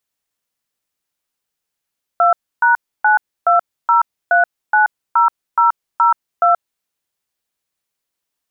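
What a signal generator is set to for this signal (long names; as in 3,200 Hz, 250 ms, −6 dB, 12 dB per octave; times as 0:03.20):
touch tones "2#920390002", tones 129 ms, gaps 293 ms, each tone −11.5 dBFS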